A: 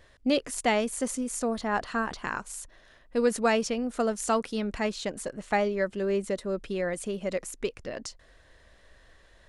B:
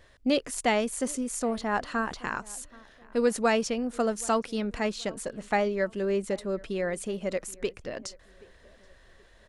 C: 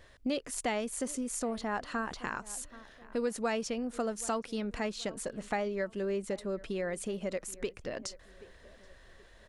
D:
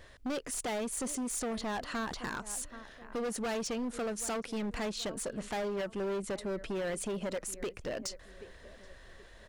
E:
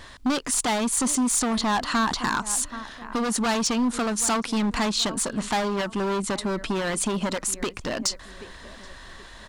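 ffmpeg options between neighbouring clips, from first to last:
ffmpeg -i in.wav -filter_complex "[0:a]asplit=2[link_01][link_02];[link_02]adelay=777,lowpass=frequency=2100:poles=1,volume=-23dB,asplit=2[link_03][link_04];[link_04]adelay=777,lowpass=frequency=2100:poles=1,volume=0.38,asplit=2[link_05][link_06];[link_06]adelay=777,lowpass=frequency=2100:poles=1,volume=0.38[link_07];[link_01][link_03][link_05][link_07]amix=inputs=4:normalize=0" out.wav
ffmpeg -i in.wav -af "acompressor=threshold=-35dB:ratio=2" out.wav
ffmpeg -i in.wav -af "asoftclip=type=hard:threshold=-35dB,volume=3dB" out.wav
ffmpeg -i in.wav -af "equalizer=frequency=250:width_type=o:width=1:gain=6,equalizer=frequency=500:width_type=o:width=1:gain=-7,equalizer=frequency=1000:width_type=o:width=1:gain=9,equalizer=frequency=4000:width_type=o:width=1:gain=6,equalizer=frequency=8000:width_type=o:width=1:gain=5,volume=8dB" out.wav

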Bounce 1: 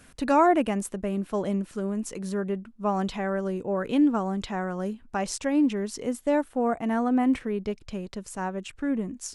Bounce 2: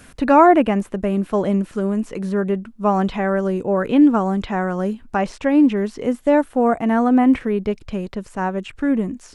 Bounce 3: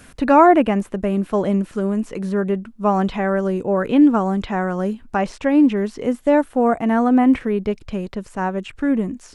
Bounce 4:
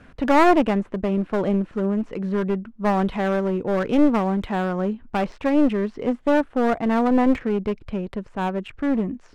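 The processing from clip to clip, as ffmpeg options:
ffmpeg -i in.wav -filter_complex "[0:a]acrossover=split=3100[link_01][link_02];[link_02]acompressor=threshold=-56dB:ratio=4:attack=1:release=60[link_03];[link_01][link_03]amix=inputs=2:normalize=0,volume=8.5dB" out.wav
ffmpeg -i in.wav -af anull out.wav
ffmpeg -i in.wav -af "adynamicsmooth=sensitivity=3:basefreq=2500,aeval=exprs='clip(val(0),-1,0.0944)':channel_layout=same,volume=-1.5dB" out.wav

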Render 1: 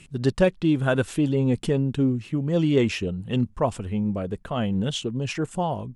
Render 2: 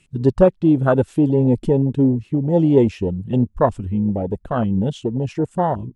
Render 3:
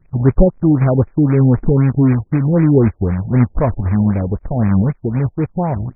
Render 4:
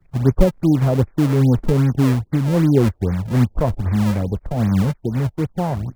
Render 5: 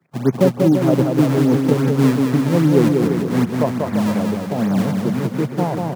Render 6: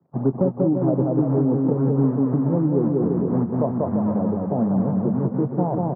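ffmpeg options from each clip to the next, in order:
ffmpeg -i in.wav -af "afwtdn=0.0631,equalizer=frequency=160:width_type=o:width=1.5:gain=-2.5,volume=7.5dB" out.wav
ffmpeg -i in.wav -af "aemphasis=mode=reproduction:type=riaa,acrusher=bits=3:mode=log:mix=0:aa=0.000001,afftfilt=real='re*lt(b*sr/1024,850*pow(2600/850,0.5+0.5*sin(2*PI*3.9*pts/sr)))':imag='im*lt(b*sr/1024,850*pow(2600/850,0.5+0.5*sin(2*PI*3.9*pts/sr)))':win_size=1024:overlap=0.75,volume=-4dB" out.wav
ffmpeg -i in.wav -filter_complex "[0:a]acrossover=split=160|240|1100[link_01][link_02][link_03][link_04];[link_02]acrusher=samples=34:mix=1:aa=0.000001:lfo=1:lforange=54.4:lforate=2.5[link_05];[link_04]alimiter=level_in=3.5dB:limit=-24dB:level=0:latency=1:release=207,volume=-3.5dB[link_06];[link_01][link_05][link_03][link_06]amix=inputs=4:normalize=0,volume=-3dB" out.wav
ffmpeg -i in.wav -af "highpass=frequency=160:width=0.5412,highpass=frequency=160:width=1.3066,aecho=1:1:190|342|463.6|560.9|638.7:0.631|0.398|0.251|0.158|0.1,volume=1.5dB" out.wav
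ffmpeg -i in.wav -filter_complex "[0:a]lowpass=frequency=1000:width=0.5412,lowpass=frequency=1000:width=1.3066,acompressor=threshold=-17dB:ratio=4,asplit=2[link_01][link_02];[link_02]adelay=22,volume=-13.5dB[link_03];[link_01][link_03]amix=inputs=2:normalize=0" out.wav

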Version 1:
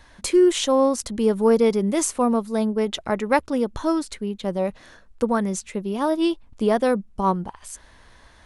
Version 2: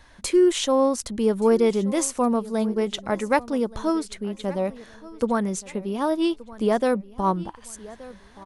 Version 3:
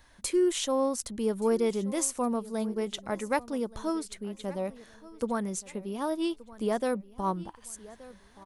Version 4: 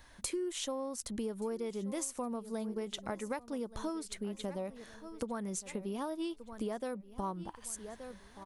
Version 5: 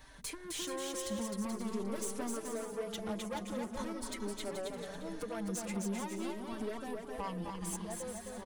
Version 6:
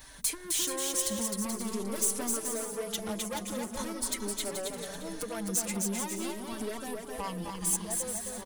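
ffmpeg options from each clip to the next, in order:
ffmpeg -i in.wav -af "aecho=1:1:1175|2350|3525:0.106|0.036|0.0122,volume=-1.5dB" out.wav
ffmpeg -i in.wav -af "highshelf=frequency=9200:gain=11,volume=-7.5dB" out.wav
ffmpeg -i in.wav -af "acompressor=threshold=-35dB:ratio=10,volume=1dB" out.wav
ffmpeg -i in.wav -filter_complex "[0:a]aeval=exprs='(tanh(100*val(0)+0.3)-tanh(0.3))/100':channel_layout=same,aecho=1:1:260|429|538.8|610.3|656.7:0.631|0.398|0.251|0.158|0.1,asplit=2[link_01][link_02];[link_02]adelay=4.7,afreqshift=0.44[link_03];[link_01][link_03]amix=inputs=2:normalize=1,volume=6.5dB" out.wav
ffmpeg -i in.wav -af "crystalizer=i=2.5:c=0,volume=2.5dB" out.wav

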